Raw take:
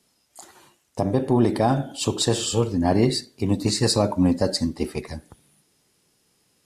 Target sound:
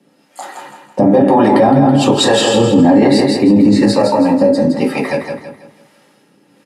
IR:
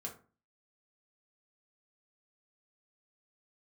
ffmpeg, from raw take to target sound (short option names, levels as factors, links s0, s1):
-filter_complex "[0:a]highpass=86,acrossover=split=160 3100:gain=0.0631 1 0.224[s0][s1][s2];[s0][s1][s2]amix=inputs=3:normalize=0,asettb=1/sr,asplit=3[s3][s4][s5];[s3]atrim=end=3.734[s6];[s4]atrim=start=3.73:end=5.01,asetpts=PTS-STARTPTS,afade=t=in:d=0.004:c=qsin,afade=t=out:st=1.276:d=0.004:c=qsin,acrossover=split=570|5800[s7][s8][s9];[s7]acompressor=threshold=0.0355:ratio=4[s10];[s8]acompressor=threshold=0.0141:ratio=4[s11];[s9]acompressor=threshold=0.00501:ratio=4[s12];[s10][s11][s12]amix=inputs=3:normalize=0[s13];[s5]atrim=start=5.006[s14];[s6][s13]acrossfade=d=0.004:c1=hsin:c2=qsin[s15];[s15][s14]acrossfade=d=0.004:c1=qsin:c2=hsin,acrossover=split=490[s16][s17];[s16]aeval=exprs='val(0)*(1-0.7/2+0.7/2*cos(2*PI*1.1*n/s))':c=same[s18];[s17]aeval=exprs='val(0)*(1-0.7/2-0.7/2*cos(2*PI*1.1*n/s))':c=same[s19];[s18][s19]amix=inputs=2:normalize=0,aecho=1:1:164|328|492|656|820:0.501|0.19|0.0724|0.0275|0.0105[s20];[1:a]atrim=start_sample=2205,atrim=end_sample=3528,asetrate=52920,aresample=44100[s21];[s20][s21]afir=irnorm=-1:irlink=0,alimiter=level_in=18.8:limit=0.891:release=50:level=0:latency=1,volume=0.891"